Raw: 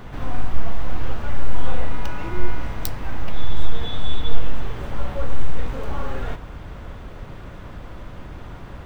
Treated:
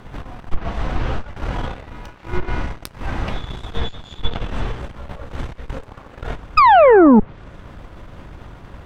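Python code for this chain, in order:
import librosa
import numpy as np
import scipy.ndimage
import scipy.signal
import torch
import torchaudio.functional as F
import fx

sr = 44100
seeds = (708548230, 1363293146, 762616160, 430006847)

y = fx.spec_paint(x, sr, seeds[0], shape='fall', start_s=6.57, length_s=0.63, low_hz=200.0, high_hz=1300.0, level_db=-8.0)
y = fx.cheby_harmonics(y, sr, harmonics=(6,), levels_db=(-11,), full_scale_db=-1.0)
y = fx.env_lowpass_down(y, sr, base_hz=1700.0, full_db=-6.5)
y = F.gain(torch.from_numpy(y), -1.0).numpy()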